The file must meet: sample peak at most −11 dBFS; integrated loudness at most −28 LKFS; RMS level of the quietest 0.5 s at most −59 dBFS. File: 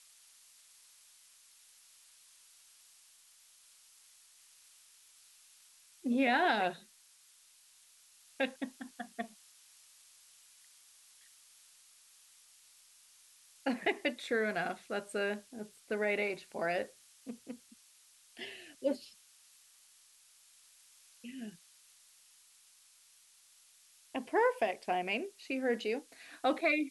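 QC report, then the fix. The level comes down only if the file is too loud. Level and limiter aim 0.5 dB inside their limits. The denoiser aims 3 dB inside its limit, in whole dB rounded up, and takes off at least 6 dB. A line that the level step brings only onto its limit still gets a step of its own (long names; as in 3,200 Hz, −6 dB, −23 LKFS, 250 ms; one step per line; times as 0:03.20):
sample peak −17.5 dBFS: in spec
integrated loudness −35.5 LKFS: in spec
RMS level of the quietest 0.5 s −64 dBFS: in spec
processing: no processing needed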